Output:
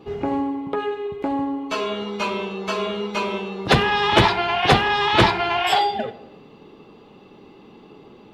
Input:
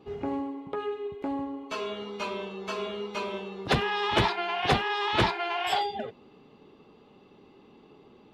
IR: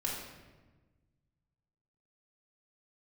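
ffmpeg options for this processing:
-filter_complex "[0:a]asplit=2[s0][s1];[1:a]atrim=start_sample=2205,afade=t=out:st=0.43:d=0.01,atrim=end_sample=19404,adelay=6[s2];[s1][s2]afir=irnorm=-1:irlink=0,volume=0.15[s3];[s0][s3]amix=inputs=2:normalize=0,volume=2.66"

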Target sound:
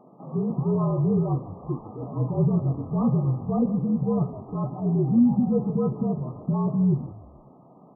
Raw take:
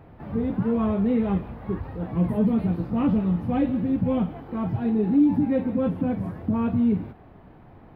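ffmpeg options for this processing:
-filter_complex "[0:a]afreqshift=-52,afftfilt=real='re*between(b*sr/4096,120,1300)':imag='im*between(b*sr/4096,120,1300)':win_size=4096:overlap=0.75,asplit=4[s0][s1][s2][s3];[s1]adelay=153,afreqshift=-38,volume=0.141[s4];[s2]adelay=306,afreqshift=-76,volume=0.0525[s5];[s3]adelay=459,afreqshift=-114,volume=0.0193[s6];[s0][s4][s5][s6]amix=inputs=4:normalize=0"

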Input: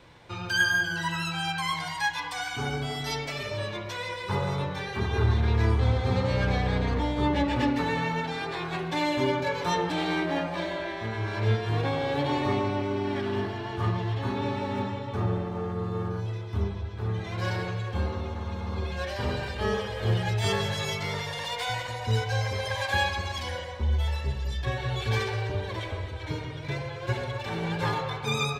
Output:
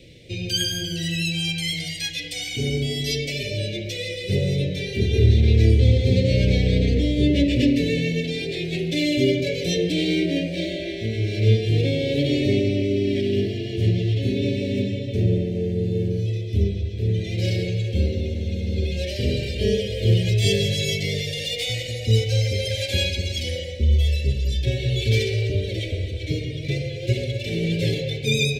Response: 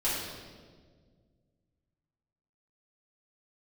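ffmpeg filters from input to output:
-af "asuperstop=centerf=1100:order=8:qfactor=0.66,volume=2.51"

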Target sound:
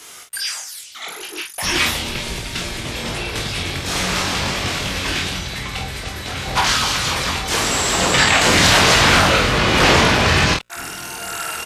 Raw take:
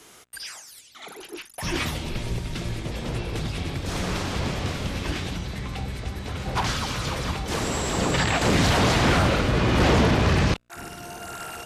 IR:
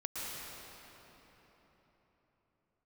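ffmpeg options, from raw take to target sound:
-af "tiltshelf=f=760:g=-6,aecho=1:1:22|48:0.562|0.501,volume=1.78"

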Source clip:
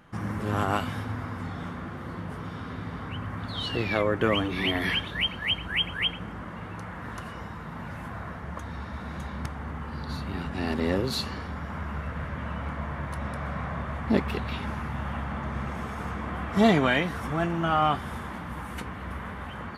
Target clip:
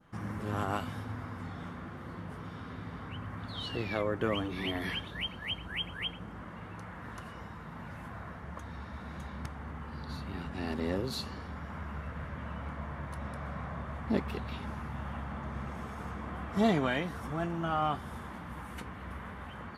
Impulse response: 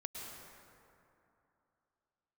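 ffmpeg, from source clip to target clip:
-af "adynamicequalizer=threshold=0.00794:dfrequency=2300:dqfactor=1:tfrequency=2300:tqfactor=1:attack=5:release=100:ratio=0.375:range=2:mode=cutabove:tftype=bell,volume=0.473"

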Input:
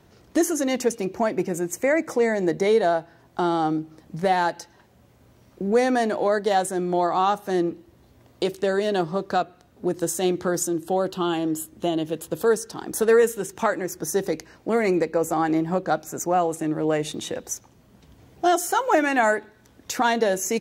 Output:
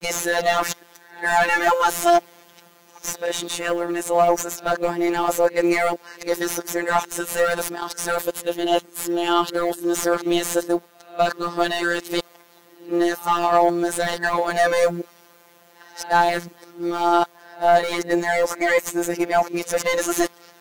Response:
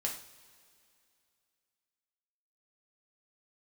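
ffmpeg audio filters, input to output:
-filter_complex "[0:a]areverse,aemphasis=mode=production:type=riaa,asplit=2[s0][s1];[s1]highpass=f=720:p=1,volume=17.8,asoftclip=type=tanh:threshold=0.944[s2];[s0][s2]amix=inputs=2:normalize=0,lowpass=f=1400:p=1,volume=0.501,acrusher=bits=9:mode=log:mix=0:aa=0.000001,afftfilt=real='hypot(re,im)*cos(PI*b)':imag='0':win_size=1024:overlap=0.75,volume=0.75"

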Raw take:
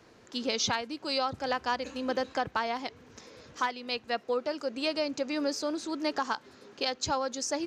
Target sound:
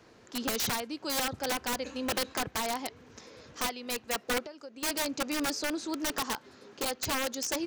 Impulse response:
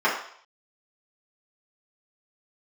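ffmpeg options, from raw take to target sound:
-filter_complex "[0:a]asettb=1/sr,asplit=3[s0][s1][s2];[s0]atrim=end=4.424[s3];[s1]atrim=start=4.42:end=4.83,asetpts=PTS-STARTPTS,afade=t=in:d=0.004:c=qsin,afade=t=out:st=0.406:d=0.004:c=qsin,acompressor=threshold=0.00708:ratio=6[s4];[s2]atrim=start=4.826[s5];[s3][s4]acrossfade=d=0.004:c1=hsin:c2=qsin[s6];[s6][s5]acrossfade=d=0.004:c1=qsin:c2=hsin,aeval=exprs='(mod(15.8*val(0)+1,2)-1)/15.8':c=same"

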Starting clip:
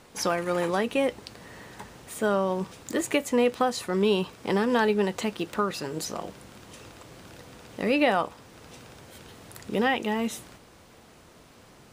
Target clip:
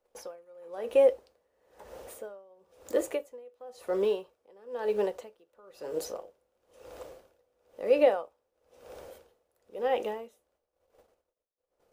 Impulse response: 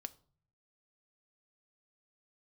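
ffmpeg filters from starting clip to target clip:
-filter_complex "[0:a]agate=range=0.0398:threshold=0.00316:ratio=16:detection=peak,asplit=2[s0][s1];[s1]acompressor=threshold=0.0158:ratio=6,volume=1[s2];[s0][s2]amix=inputs=2:normalize=0,equalizer=f=125:t=o:w=1:g=-12,equalizer=f=250:t=o:w=1:g=-12,equalizer=f=500:t=o:w=1:g=12,equalizer=f=1000:t=o:w=1:g=-3,equalizer=f=2000:t=o:w=1:g=-6,equalizer=f=4000:t=o:w=1:g=-6,equalizer=f=8000:t=o:w=1:g=-6,acrossover=split=180[s3][s4];[s3]acrusher=samples=23:mix=1:aa=0.000001:lfo=1:lforange=23:lforate=3.7[s5];[s5][s4]amix=inputs=2:normalize=0[s6];[1:a]atrim=start_sample=2205,atrim=end_sample=3528[s7];[s6][s7]afir=irnorm=-1:irlink=0,aeval=exprs='val(0)*pow(10,-31*(0.5-0.5*cos(2*PI*1*n/s))/20)':c=same"

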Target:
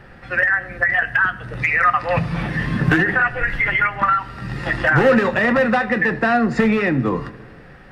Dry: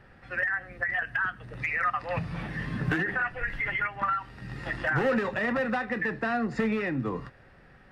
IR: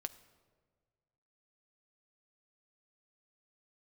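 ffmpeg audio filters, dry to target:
-filter_complex "[0:a]asplit=2[s0][s1];[1:a]atrim=start_sample=2205[s2];[s1][s2]afir=irnorm=-1:irlink=0,volume=3.55[s3];[s0][s3]amix=inputs=2:normalize=0"

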